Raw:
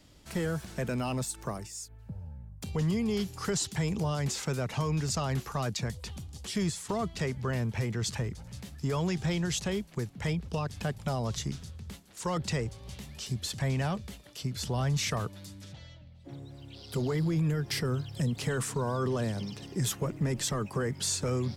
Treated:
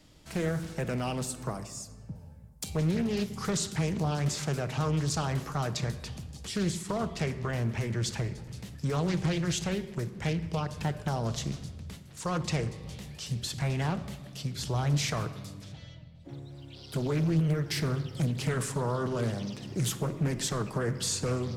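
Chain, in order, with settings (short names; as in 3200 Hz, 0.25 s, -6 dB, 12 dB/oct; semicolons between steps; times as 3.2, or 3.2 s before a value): 2.15–2.7 tone controls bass -7 dB, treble +12 dB; shoebox room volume 1300 m³, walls mixed, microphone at 0.56 m; Doppler distortion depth 0.6 ms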